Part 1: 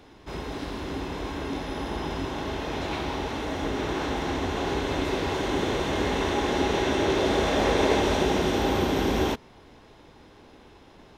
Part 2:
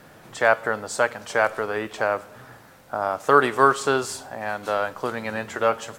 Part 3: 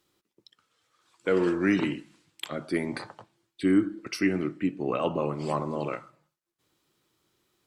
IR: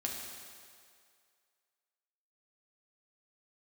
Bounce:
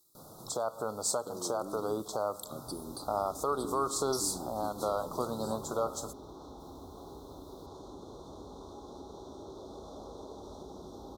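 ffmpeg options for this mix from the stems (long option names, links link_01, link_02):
-filter_complex "[0:a]acompressor=threshold=-34dB:ratio=3,acrusher=bits=10:mix=0:aa=0.000001,adelay=2400,volume=-12.5dB[link_01];[1:a]alimiter=limit=-12dB:level=0:latency=1:release=158,adelay=150,volume=-3dB[link_02];[2:a]acompressor=threshold=-33dB:ratio=6,aemphasis=mode=production:type=cd,volume=-5dB[link_03];[link_02][link_03]amix=inputs=2:normalize=0,highshelf=frequency=6900:gain=10.5,alimiter=limit=-18.5dB:level=0:latency=1:release=300,volume=0dB[link_04];[link_01][link_04]amix=inputs=2:normalize=0,asuperstop=centerf=2200:order=12:qfactor=0.92"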